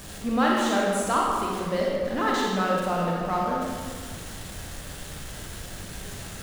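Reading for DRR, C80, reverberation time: -3.5 dB, 1.0 dB, 1.8 s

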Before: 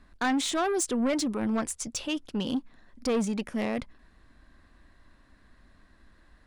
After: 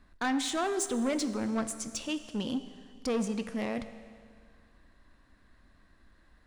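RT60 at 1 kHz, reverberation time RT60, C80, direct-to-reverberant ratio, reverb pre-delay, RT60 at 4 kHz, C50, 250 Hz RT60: 2.0 s, 2.0 s, 12.5 dB, 10.5 dB, 18 ms, 2.0 s, 12.0 dB, 2.0 s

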